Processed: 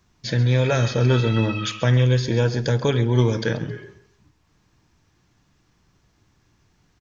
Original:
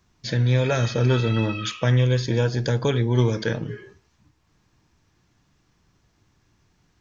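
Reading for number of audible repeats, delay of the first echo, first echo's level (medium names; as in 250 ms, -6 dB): 2, 134 ms, -15.5 dB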